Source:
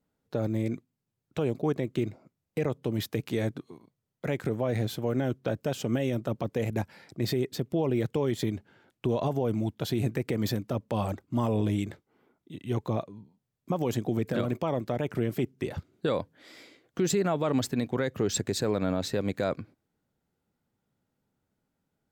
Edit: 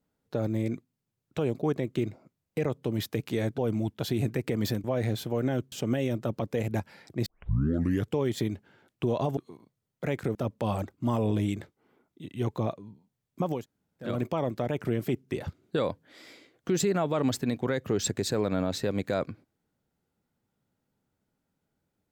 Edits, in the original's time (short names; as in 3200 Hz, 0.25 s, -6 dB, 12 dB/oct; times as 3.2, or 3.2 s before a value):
3.58–4.56 swap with 9.39–10.65
5.44–5.74 cut
7.28 tape start 0.85 s
13.88–14.37 room tone, crossfade 0.16 s